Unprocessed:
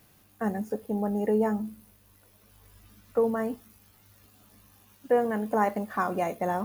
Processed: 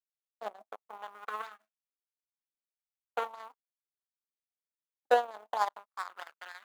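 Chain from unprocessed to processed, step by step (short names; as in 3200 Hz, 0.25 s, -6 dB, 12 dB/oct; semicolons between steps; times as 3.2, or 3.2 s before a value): median filter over 25 samples; power-law curve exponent 3; in parallel at -1 dB: compressor, threshold -41 dBFS, peak gain reduction 18.5 dB; on the sum: LFO high-pass saw up 0.42 Hz 480–2500 Hz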